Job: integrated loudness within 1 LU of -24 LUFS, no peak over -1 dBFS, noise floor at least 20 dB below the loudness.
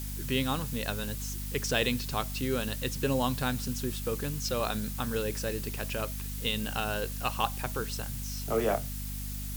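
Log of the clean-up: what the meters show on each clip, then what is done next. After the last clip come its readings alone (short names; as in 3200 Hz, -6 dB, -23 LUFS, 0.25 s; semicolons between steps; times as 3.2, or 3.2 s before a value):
hum 50 Hz; harmonics up to 250 Hz; hum level -35 dBFS; noise floor -37 dBFS; noise floor target -52 dBFS; loudness -32.0 LUFS; peak -11.5 dBFS; loudness target -24.0 LUFS
-> de-hum 50 Hz, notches 5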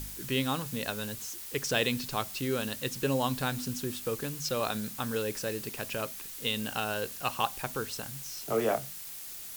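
hum none; noise floor -43 dBFS; noise floor target -53 dBFS
-> denoiser 10 dB, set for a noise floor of -43 dBFS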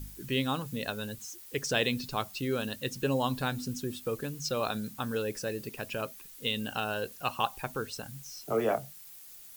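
noise floor -50 dBFS; noise floor target -54 dBFS
-> denoiser 6 dB, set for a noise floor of -50 dBFS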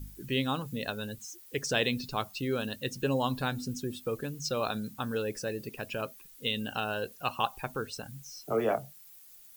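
noise floor -54 dBFS; loudness -33.5 LUFS; peak -12.5 dBFS; loudness target -24.0 LUFS
-> gain +9.5 dB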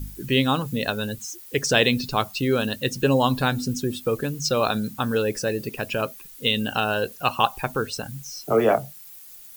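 loudness -24.0 LUFS; peak -3.0 dBFS; noise floor -44 dBFS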